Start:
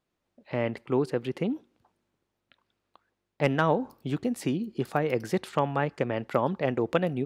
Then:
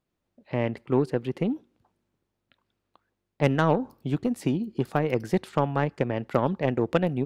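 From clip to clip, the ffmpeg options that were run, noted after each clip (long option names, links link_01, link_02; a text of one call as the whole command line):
ffmpeg -i in.wav -af "lowshelf=frequency=320:gain=6.5,aeval=exprs='0.447*(cos(1*acos(clip(val(0)/0.447,-1,1)))-cos(1*PI/2))+0.0178*(cos(7*acos(clip(val(0)/0.447,-1,1)))-cos(7*PI/2))':channel_layout=same" out.wav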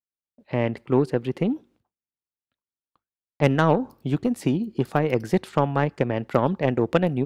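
ffmpeg -i in.wav -af "agate=range=-33dB:threshold=-53dB:ratio=3:detection=peak,volume=3dB" out.wav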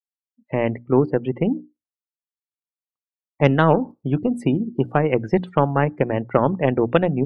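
ffmpeg -i in.wav -af "bandreject=frequency=60:width_type=h:width=6,bandreject=frequency=120:width_type=h:width=6,bandreject=frequency=180:width_type=h:width=6,bandreject=frequency=240:width_type=h:width=6,bandreject=frequency=300:width_type=h:width=6,afftdn=noise_reduction=36:noise_floor=-38,volume=3.5dB" out.wav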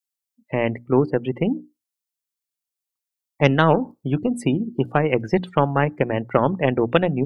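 ffmpeg -i in.wav -af "highshelf=frequency=3100:gain=11.5,volume=-1dB" out.wav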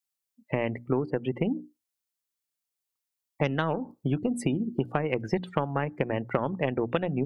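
ffmpeg -i in.wav -af "acompressor=threshold=-23dB:ratio=6" out.wav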